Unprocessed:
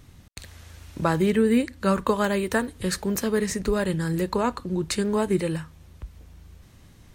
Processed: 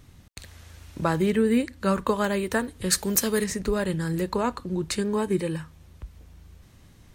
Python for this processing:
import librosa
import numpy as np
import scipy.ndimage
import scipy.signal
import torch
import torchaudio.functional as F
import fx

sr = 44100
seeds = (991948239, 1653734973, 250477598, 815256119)

y = fx.high_shelf(x, sr, hz=3300.0, db=11.5, at=(2.9, 3.44))
y = fx.notch_comb(y, sr, f0_hz=690.0, at=(5.0, 5.6))
y = y * 10.0 ** (-1.5 / 20.0)